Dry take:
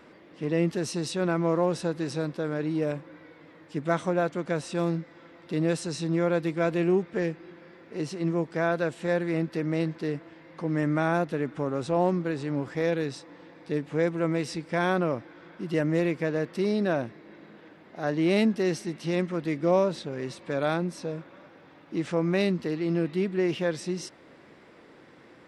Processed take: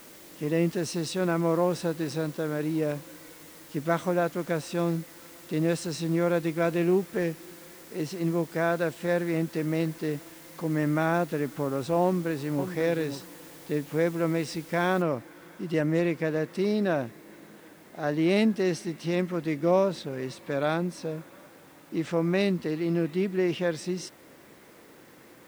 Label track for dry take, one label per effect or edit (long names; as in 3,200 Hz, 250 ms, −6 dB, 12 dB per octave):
12.040000	12.710000	delay throw 540 ms, feedback 15%, level −9.5 dB
15.020000	15.020000	noise floor change −51 dB −61 dB